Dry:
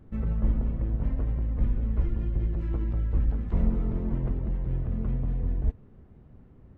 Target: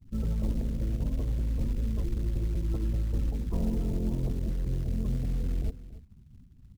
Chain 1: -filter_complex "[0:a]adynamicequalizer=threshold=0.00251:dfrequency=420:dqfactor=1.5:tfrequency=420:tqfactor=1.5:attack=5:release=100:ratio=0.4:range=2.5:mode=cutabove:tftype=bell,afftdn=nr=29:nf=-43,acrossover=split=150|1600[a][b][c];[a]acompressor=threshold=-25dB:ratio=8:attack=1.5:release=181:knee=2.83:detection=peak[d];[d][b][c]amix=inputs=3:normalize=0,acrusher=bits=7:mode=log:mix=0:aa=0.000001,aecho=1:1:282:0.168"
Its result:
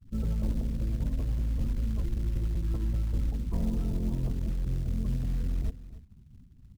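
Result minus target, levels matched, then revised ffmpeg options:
500 Hz band -3.5 dB
-filter_complex "[0:a]adynamicequalizer=threshold=0.00251:dfrequency=1600:dqfactor=1.5:tfrequency=1600:tqfactor=1.5:attack=5:release=100:ratio=0.4:range=2.5:mode=cutabove:tftype=bell,afftdn=nr=29:nf=-43,acrossover=split=150|1600[a][b][c];[a]acompressor=threshold=-25dB:ratio=8:attack=1.5:release=181:knee=2.83:detection=peak[d];[d][b][c]amix=inputs=3:normalize=0,acrusher=bits=7:mode=log:mix=0:aa=0.000001,aecho=1:1:282:0.168"

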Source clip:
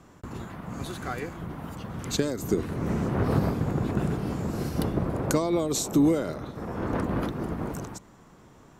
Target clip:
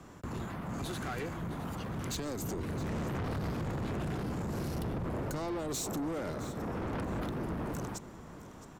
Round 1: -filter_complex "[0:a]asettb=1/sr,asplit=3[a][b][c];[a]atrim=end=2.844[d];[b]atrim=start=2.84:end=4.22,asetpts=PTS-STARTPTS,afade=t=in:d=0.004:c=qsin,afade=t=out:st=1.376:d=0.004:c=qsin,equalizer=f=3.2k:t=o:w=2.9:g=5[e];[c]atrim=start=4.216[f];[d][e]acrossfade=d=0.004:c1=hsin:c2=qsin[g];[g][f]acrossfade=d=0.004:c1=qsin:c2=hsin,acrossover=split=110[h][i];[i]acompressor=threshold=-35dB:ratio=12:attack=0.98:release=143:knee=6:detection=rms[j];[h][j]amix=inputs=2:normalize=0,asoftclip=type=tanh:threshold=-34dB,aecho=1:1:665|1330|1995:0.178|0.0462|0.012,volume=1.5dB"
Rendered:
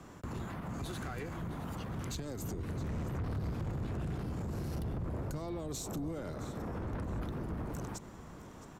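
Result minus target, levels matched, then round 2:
compressor: peak gain reduction +9 dB
-filter_complex "[0:a]asettb=1/sr,asplit=3[a][b][c];[a]atrim=end=2.844[d];[b]atrim=start=2.84:end=4.22,asetpts=PTS-STARTPTS,afade=t=in:d=0.004:c=qsin,afade=t=out:st=1.376:d=0.004:c=qsin,equalizer=f=3.2k:t=o:w=2.9:g=5[e];[c]atrim=start=4.216[f];[d][e]acrossfade=d=0.004:c1=hsin:c2=qsin[g];[g][f]acrossfade=d=0.004:c1=qsin:c2=hsin,acrossover=split=110[h][i];[i]acompressor=threshold=-25dB:ratio=12:attack=0.98:release=143:knee=6:detection=rms[j];[h][j]amix=inputs=2:normalize=0,asoftclip=type=tanh:threshold=-34dB,aecho=1:1:665|1330|1995:0.178|0.0462|0.012,volume=1.5dB"

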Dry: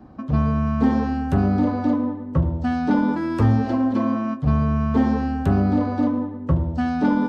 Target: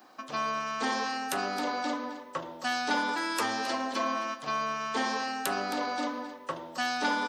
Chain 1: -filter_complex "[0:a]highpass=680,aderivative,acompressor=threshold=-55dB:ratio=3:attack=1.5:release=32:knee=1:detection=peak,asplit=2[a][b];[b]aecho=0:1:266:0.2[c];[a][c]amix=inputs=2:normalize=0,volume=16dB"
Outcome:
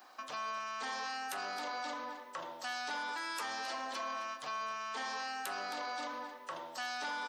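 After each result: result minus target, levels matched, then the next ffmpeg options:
compressor: peak gain reduction +11.5 dB; 250 Hz band -9.0 dB
-filter_complex "[0:a]highpass=680,aderivative,asplit=2[a][b];[b]aecho=0:1:266:0.2[c];[a][c]amix=inputs=2:normalize=0,volume=16dB"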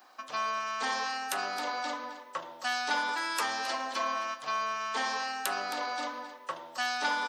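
250 Hz band -10.0 dB
-filter_complex "[0:a]highpass=320,aderivative,asplit=2[a][b];[b]aecho=0:1:266:0.2[c];[a][c]amix=inputs=2:normalize=0,volume=16dB"

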